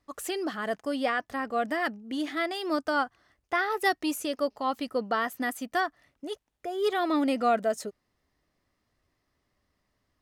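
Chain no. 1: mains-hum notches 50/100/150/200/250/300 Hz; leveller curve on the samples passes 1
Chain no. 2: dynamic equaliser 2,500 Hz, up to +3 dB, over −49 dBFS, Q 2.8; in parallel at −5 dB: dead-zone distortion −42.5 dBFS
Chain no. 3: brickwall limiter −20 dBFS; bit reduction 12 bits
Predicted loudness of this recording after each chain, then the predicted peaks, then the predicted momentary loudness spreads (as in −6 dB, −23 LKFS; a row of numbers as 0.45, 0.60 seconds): −26.5, −26.0, −31.0 LKFS; −12.5, −9.5, −20.0 dBFS; 9, 10, 9 LU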